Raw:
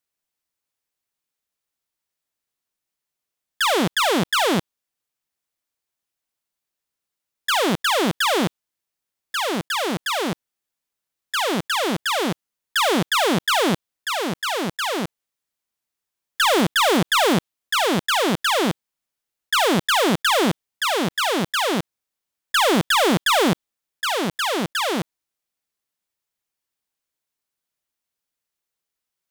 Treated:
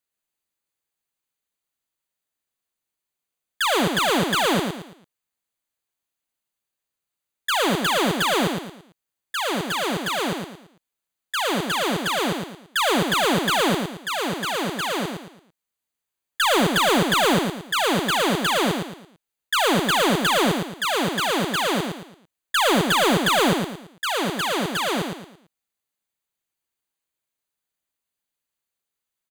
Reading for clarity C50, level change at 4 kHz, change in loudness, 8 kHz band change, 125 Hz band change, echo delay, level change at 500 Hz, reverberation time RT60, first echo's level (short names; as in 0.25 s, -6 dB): none, -1.0 dB, -1.0 dB, -1.0 dB, -0.5 dB, 0.112 s, -0.5 dB, none, -5.0 dB